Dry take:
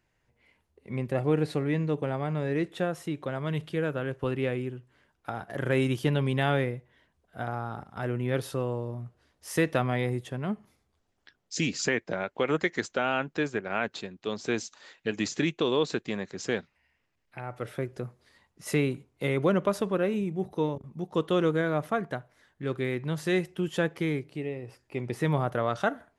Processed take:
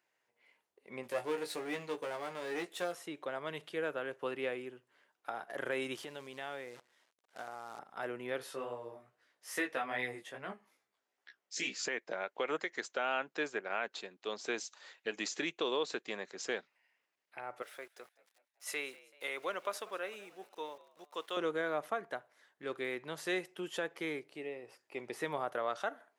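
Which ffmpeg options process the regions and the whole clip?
-filter_complex "[0:a]asettb=1/sr,asplit=3[s0][s1][s2];[s0]atrim=end=1.034[s3];[s1]atrim=start=1.03:end=2.95,asetpts=PTS-STARTPTS,afade=t=in:d=0.004:c=qsin,afade=t=out:st=1.916:d=0.004:c=qsin,aeval=exprs='if(lt(val(0),0),0.447*val(0),val(0))':c=same,highshelf=f=4000:g=11,asplit=2[s4][s5];[s5]adelay=17,volume=0.531[s6];[s4][s6]amix=inputs=2:normalize=0,atrim=end_sample=84672[s7];[s2]atrim=start=2.946[s8];[s3][s7]acrossfade=d=0.004:c1=hsin:c2=qsin[s9];[s9][s8]acrossfade=d=0.004:c1=qsin:c2=hsin,asettb=1/sr,asplit=3[s10][s11][s12];[s10]atrim=end=5.954[s13];[s11]atrim=start=5.95:end=7.79,asetpts=PTS-STARTPTS,afade=t=in:d=0.004:c=qsin,afade=t=out:st=1.836:d=0.004:c=qsin,acrusher=bits=8:dc=4:mix=0:aa=0.000001,acompressor=threshold=0.0178:ratio=3:attack=3.2:release=140:knee=1:detection=peak,lowpass=9900[s14];[s12]atrim=start=7.786[s15];[s13][s14]acrossfade=d=0.004:c1=hsin:c2=qsin[s16];[s16][s15]acrossfade=d=0.004:c1=qsin:c2=hsin,asettb=1/sr,asplit=3[s17][s18][s19];[s17]atrim=end=8.384[s20];[s18]atrim=start=8.38:end=11.85,asetpts=PTS-STARTPTS,afade=t=in:d=0.004:c=qsin,afade=t=out:st=3.466:d=0.004:c=qsin,equalizer=f=1900:w=1.6:g=5,flanger=delay=15.5:depth=4.8:speed=2.4,asplit=2[s21][s22];[s22]adelay=15,volume=0.447[s23];[s21][s23]amix=inputs=2:normalize=0,atrim=end_sample=153027[s24];[s19]atrim=start=11.846[s25];[s20][s24]acrossfade=d=0.004:c1=hsin:c2=qsin[s26];[s26][s25]acrossfade=d=0.004:c1=qsin:c2=hsin,asettb=1/sr,asplit=3[s27][s28][s29];[s27]atrim=end=17.624[s30];[s28]atrim=start=17.62:end=21.37,asetpts=PTS-STARTPTS,afade=t=in:d=0.004:c=qsin,afade=t=out:st=3.746:d=0.004:c=qsin,highpass=f=1200:p=1,aeval=exprs='val(0)*gte(abs(val(0)),0.00178)':c=same,asplit=5[s31][s32][s33][s34][s35];[s32]adelay=192,afreqshift=68,volume=0.0891[s36];[s33]adelay=384,afreqshift=136,volume=0.0437[s37];[s34]adelay=576,afreqshift=204,volume=0.0214[s38];[s35]adelay=768,afreqshift=272,volume=0.0105[s39];[s31][s36][s37][s38][s39]amix=inputs=5:normalize=0,atrim=end_sample=165375[s40];[s29]atrim=start=21.366[s41];[s30][s40]acrossfade=d=0.004:c1=hsin:c2=qsin[s42];[s42][s41]acrossfade=d=0.004:c1=qsin:c2=hsin,highpass=460,alimiter=limit=0.1:level=0:latency=1:release=257,volume=0.668"

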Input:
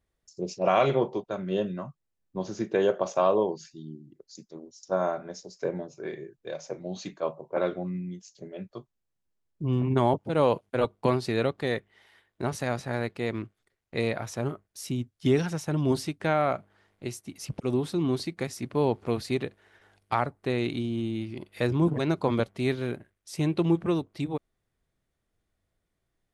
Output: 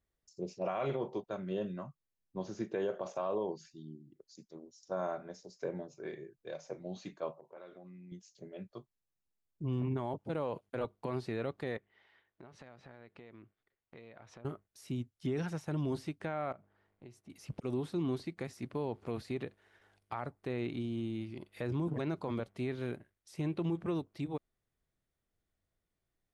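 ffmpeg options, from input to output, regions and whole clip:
-filter_complex "[0:a]asettb=1/sr,asplit=3[s0][s1][s2];[s0]atrim=end=7.324[s3];[s1]atrim=start=7.32:end=8.12,asetpts=PTS-STARTPTS,afade=t=in:d=0.004:c=qsin,afade=t=out:st=0.796:d=0.004:c=qsin,lowshelf=f=260:g=-9.5,acompressor=threshold=0.00794:ratio=5:attack=3.2:release=140:knee=1:detection=peak[s4];[s2]atrim=start=8.116[s5];[s3][s4]acrossfade=d=0.004:c1=hsin:c2=qsin[s6];[s6][s5]acrossfade=d=0.004:c1=qsin:c2=hsin,asettb=1/sr,asplit=3[s7][s8][s9];[s7]atrim=end=11.774[s10];[s8]atrim=start=11.77:end=14.45,asetpts=PTS-STARTPTS,afade=t=in:d=0.004:c=qsin,afade=t=out:st=2.676:d=0.004:c=qsin,lowpass=3300,lowshelf=f=150:g=-5.5,acompressor=threshold=0.00708:ratio=6:attack=3.2:release=140:knee=1:detection=peak[s11];[s9]atrim=start=14.446[s12];[s10][s11]acrossfade=d=0.004:c1=hsin:c2=qsin[s13];[s13][s12]acrossfade=d=0.004:c1=qsin:c2=hsin,asettb=1/sr,asplit=3[s14][s15][s16];[s14]atrim=end=16.524[s17];[s15]atrim=start=16.52:end=17.3,asetpts=PTS-STARTPTS,afade=t=in:d=0.004:c=qsin,afade=t=out:st=0.776:d=0.004:c=qsin,lowpass=f=1500:p=1,acompressor=threshold=0.00631:ratio=3:attack=3.2:release=140:knee=1:detection=peak[s18];[s16]atrim=start=17.296[s19];[s17][s18]acrossfade=d=0.004:c1=hsin:c2=qsin[s20];[s20][s19]acrossfade=d=0.004:c1=qsin:c2=hsin,acrossover=split=2700[s21][s22];[s22]acompressor=threshold=0.00447:ratio=4:attack=1:release=60[s23];[s21][s23]amix=inputs=2:normalize=0,alimiter=limit=0.112:level=0:latency=1:release=47,volume=0.447"

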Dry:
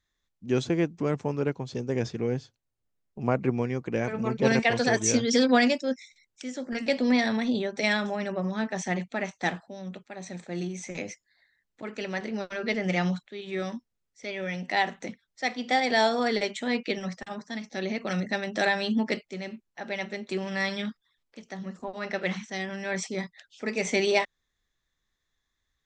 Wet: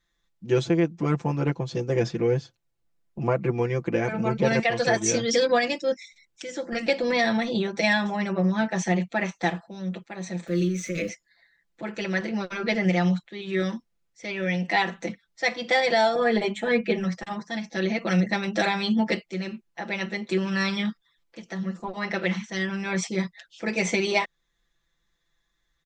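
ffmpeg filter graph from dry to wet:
-filter_complex "[0:a]asettb=1/sr,asplit=3[s0][s1][s2];[s0]atrim=end=10.474[s3];[s1]atrim=start=10.47:end=11.09,asetpts=PTS-STARTPTS,afade=t=in:d=0.004:c=qsin,afade=t=out:st=0.616:d=0.004:c=qsin,aeval=exprs='val(0)+0.5*0.00422*sgn(val(0))':c=same,asuperstop=centerf=840:order=12:qfactor=1.9[s4];[s2]atrim=start=11.086[s5];[s3][s4]acrossfade=d=0.004:c1=hsin:c2=qsin[s6];[s6][s5]acrossfade=d=0.004:c1=qsin:c2=hsin,asettb=1/sr,asplit=3[s7][s8][s9];[s7]atrim=end=16.154[s10];[s8]atrim=start=16.15:end=17.04,asetpts=PTS-STARTPTS,afade=t=in:d=0.004:c=qsin,afade=t=out:st=0.886:d=0.004:c=qsin,equalizer=f=5100:w=0.89:g=-12,bandreject=f=50:t=h:w=6,bandreject=f=100:t=h:w=6,bandreject=f=150:t=h:w=6,bandreject=f=200:t=h:w=6,bandreject=f=250:t=h:w=6,bandreject=f=300:t=h:w=6,aecho=1:1:4.7:0.97,atrim=end_sample=39249[s11];[s9]atrim=start=17.036[s12];[s10][s11]acrossfade=d=0.004:c1=hsin:c2=qsin[s13];[s13][s12]acrossfade=d=0.004:c1=qsin:c2=hsin,highshelf=f=6400:g=-5.5,aecho=1:1:5.9:0.98,alimiter=limit=0.2:level=0:latency=1:release=397,volume=1.33"

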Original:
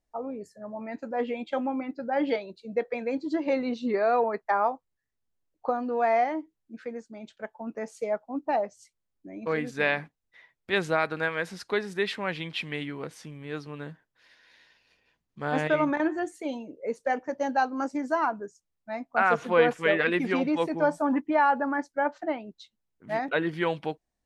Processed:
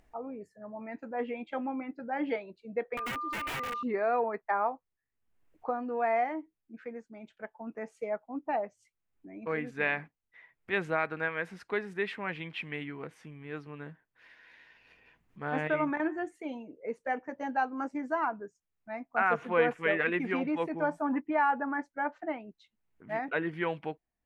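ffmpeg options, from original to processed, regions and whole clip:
-filter_complex "[0:a]asettb=1/sr,asplit=3[s0][s1][s2];[s0]atrim=end=2.974[s3];[s1]atrim=start=2.97:end=3.83,asetpts=PTS-STARTPTS,afade=t=in:d=0.004:c=qsin,afade=t=out:st=0.856:d=0.004:c=qsin,aeval=exprs='val(0)+0.0355*sin(2*PI*1200*n/s)':c=same,highpass=f=370:w=0.5412,highpass=f=370:w=1.3066,aeval=exprs='(mod(16.8*val(0)+1,2)-1)/16.8':c=same[s4];[s2]atrim=start=3.826[s5];[s3][s4]acrossfade=d=0.004:c1=hsin:c2=qsin[s6];[s6][s5]acrossfade=d=0.004:c1=qsin:c2=hsin,highshelf=f=3200:t=q:w=1.5:g=-8.5,bandreject=f=560:w=13,acompressor=mode=upward:threshold=0.00631:ratio=2.5,volume=0.562"

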